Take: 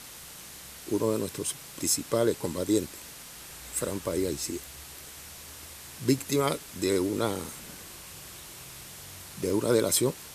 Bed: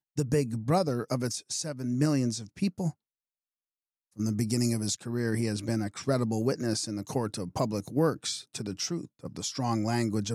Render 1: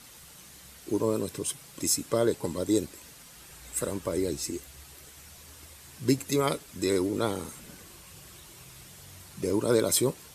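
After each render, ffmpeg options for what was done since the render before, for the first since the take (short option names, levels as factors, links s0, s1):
-af "afftdn=nr=7:nf=-46"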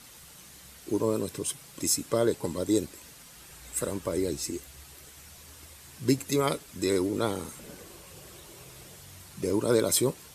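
-filter_complex "[0:a]asettb=1/sr,asplit=3[s0][s1][s2];[s0]atrim=end=7.594[s3];[s1]atrim=start=7.59:end=8.98,asetpts=PTS-STARTPTS,afade=t=in:d=0.004:c=qsin,afade=t=out:st=1.386:d=0.004:c=qsin,equalizer=f=480:w=1.2:g=8.5[s4];[s2]atrim=start=8.976[s5];[s3][s4]acrossfade=d=0.004:c1=hsin:c2=qsin[s6];[s6][s5]acrossfade=d=0.004:c1=qsin:c2=hsin"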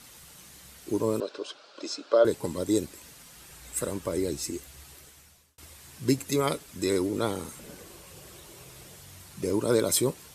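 -filter_complex "[0:a]asettb=1/sr,asplit=3[s0][s1][s2];[s0]atrim=end=1.204[s3];[s1]atrim=start=1.2:end=2.25,asetpts=PTS-STARTPTS,afade=t=in:d=0.004:c=qsin,afade=t=out:st=1.046:d=0.004:c=qsin,highpass=f=330:w=0.5412,highpass=f=330:w=1.3066,equalizer=f=600:t=q:w=4:g=9,equalizer=f=1400:t=q:w=4:g=9,equalizer=f=2000:t=q:w=4:g=-9,equalizer=f=4400:t=q:w=4:g=4,lowpass=f=4800:w=0.5412,lowpass=f=4800:w=1.3066[s4];[s2]atrim=start=2.246[s5];[s3][s4]acrossfade=d=0.004:c1=hsin:c2=qsin[s6];[s6][s5]acrossfade=d=0.004:c1=qsin:c2=hsin,asplit=2[s7][s8];[s7]atrim=end=5.58,asetpts=PTS-STARTPTS,afade=t=out:st=4.92:d=0.66[s9];[s8]atrim=start=5.58,asetpts=PTS-STARTPTS,afade=t=in:d=0.004:c=hsin[s10];[s9][s10]concat=n=2:v=0:a=1"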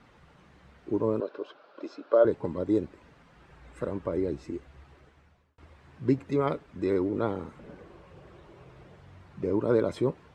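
-af "lowpass=1600"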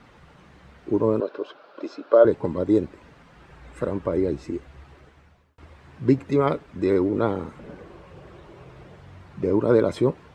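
-af "volume=2"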